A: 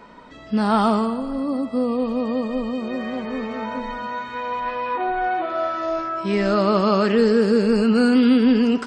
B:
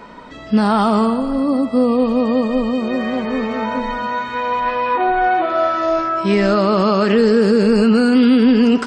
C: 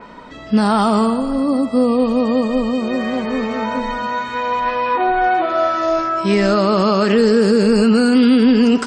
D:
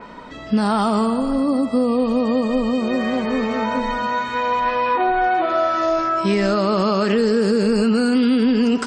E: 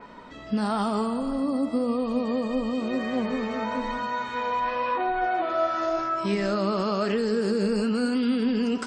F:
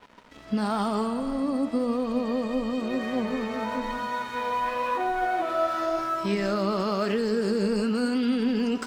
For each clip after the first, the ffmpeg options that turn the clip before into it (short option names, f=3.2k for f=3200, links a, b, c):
-af "alimiter=level_in=12dB:limit=-1dB:release=50:level=0:latency=1,volume=-5dB"
-af "adynamicequalizer=threshold=0.01:dfrequency=5000:dqfactor=0.7:tfrequency=5000:tqfactor=0.7:attack=5:release=100:ratio=0.375:range=3.5:mode=boostabove:tftype=highshelf"
-af "acompressor=threshold=-15dB:ratio=3"
-af "flanger=delay=6.9:depth=8.4:regen=76:speed=0.98:shape=sinusoidal,volume=-3dB"
-af "aeval=exprs='sgn(val(0))*max(abs(val(0))-0.00531,0)':c=same"